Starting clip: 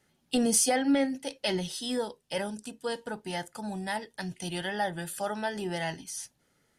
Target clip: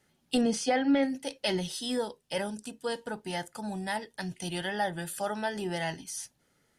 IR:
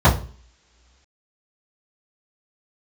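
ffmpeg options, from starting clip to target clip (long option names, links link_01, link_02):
-filter_complex "[0:a]asettb=1/sr,asplit=3[link_01][link_02][link_03];[link_01]atrim=end=0.414[link_04];[link_02]atrim=start=0.41:end=1.03,asetpts=PTS-STARTPTS,afade=type=in:duration=0.004:curve=qsin,afade=type=out:start_time=0.616:duration=0.004:curve=qsin,lowpass=4000[link_05];[link_03]atrim=start=1.026[link_06];[link_04][link_05]acrossfade=duration=0.004:curve1=hsin:curve2=qsin[link_07];[link_07][link_06]acrossfade=duration=0.004:curve1=qsin:curve2=hsin"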